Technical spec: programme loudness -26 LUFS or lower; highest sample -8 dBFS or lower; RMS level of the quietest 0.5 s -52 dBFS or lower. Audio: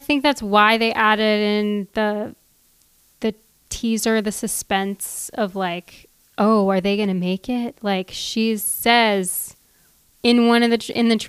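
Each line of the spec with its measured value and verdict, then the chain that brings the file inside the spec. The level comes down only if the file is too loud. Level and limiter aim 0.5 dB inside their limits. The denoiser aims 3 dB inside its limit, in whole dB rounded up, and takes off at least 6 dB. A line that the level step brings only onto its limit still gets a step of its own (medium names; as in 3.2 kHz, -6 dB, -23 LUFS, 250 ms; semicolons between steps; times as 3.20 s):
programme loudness -19.5 LUFS: fail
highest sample -2.0 dBFS: fail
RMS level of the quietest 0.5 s -58 dBFS: pass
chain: trim -7 dB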